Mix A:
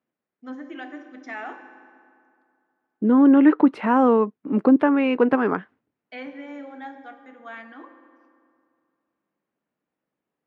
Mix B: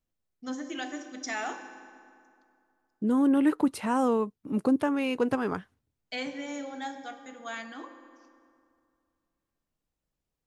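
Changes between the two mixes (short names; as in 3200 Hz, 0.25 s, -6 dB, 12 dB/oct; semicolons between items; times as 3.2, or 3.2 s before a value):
second voice -9.0 dB; master: remove Chebyshev band-pass 240–2000 Hz, order 2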